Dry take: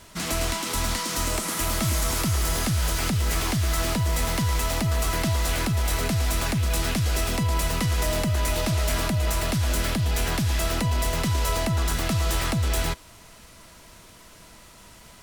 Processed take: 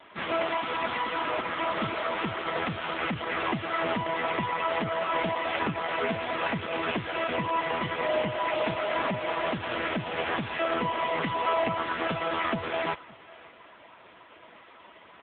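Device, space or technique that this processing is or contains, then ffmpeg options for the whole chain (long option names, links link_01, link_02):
satellite phone: -af "highpass=330,lowpass=3200,aecho=1:1:561:0.0841,volume=6dB" -ar 8000 -c:a libopencore_amrnb -b:a 5900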